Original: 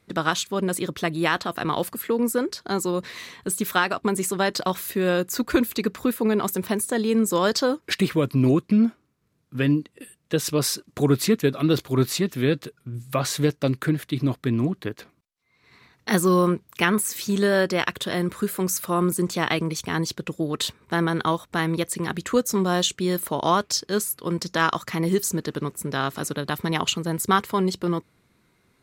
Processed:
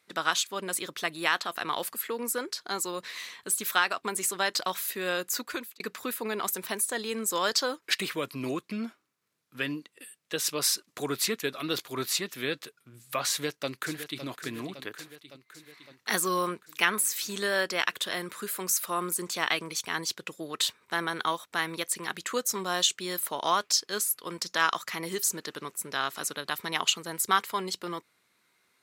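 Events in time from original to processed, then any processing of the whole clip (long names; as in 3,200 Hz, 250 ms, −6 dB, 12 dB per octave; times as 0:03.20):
0:05.35–0:05.80: fade out
0:13.30–0:14.24: delay throw 560 ms, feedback 65%, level −11.5 dB
whole clip: high-pass filter 1,400 Hz 6 dB per octave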